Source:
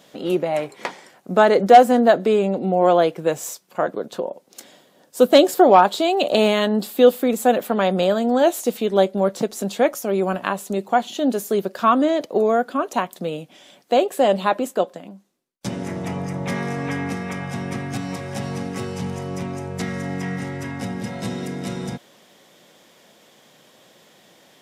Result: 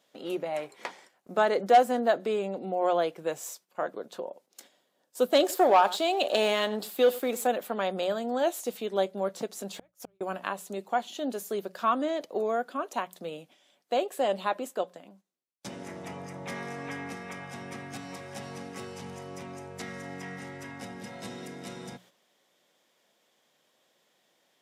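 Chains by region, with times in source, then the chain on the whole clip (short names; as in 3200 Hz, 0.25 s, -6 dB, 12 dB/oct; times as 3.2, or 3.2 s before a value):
5.4–7.47 bell 88 Hz -8.5 dB 2.7 oct + echo 95 ms -18.5 dB + sample leveller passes 1
9.74–10.21 G.711 law mismatch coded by mu + flipped gate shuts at -15 dBFS, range -38 dB
whole clip: notches 60/120/180 Hz; gate -44 dBFS, range -8 dB; low shelf 250 Hz -10 dB; gain -8.5 dB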